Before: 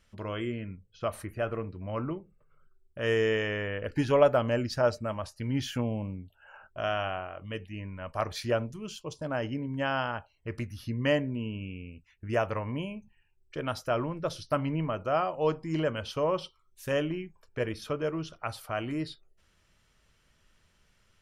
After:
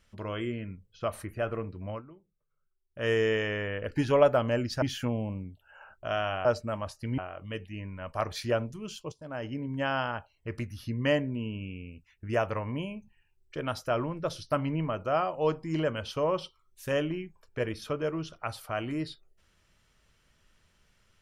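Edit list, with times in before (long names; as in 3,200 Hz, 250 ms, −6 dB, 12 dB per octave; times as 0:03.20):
0:01.90–0:03.02: duck −17 dB, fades 0.12 s
0:04.82–0:05.55: move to 0:07.18
0:09.12–0:09.68: fade in, from −14.5 dB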